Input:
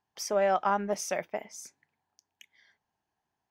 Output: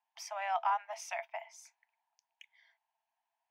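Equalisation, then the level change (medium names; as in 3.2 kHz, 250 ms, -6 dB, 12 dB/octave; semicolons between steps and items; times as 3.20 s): rippled Chebyshev high-pass 650 Hz, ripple 9 dB; tilt EQ -2 dB/octave; +2.5 dB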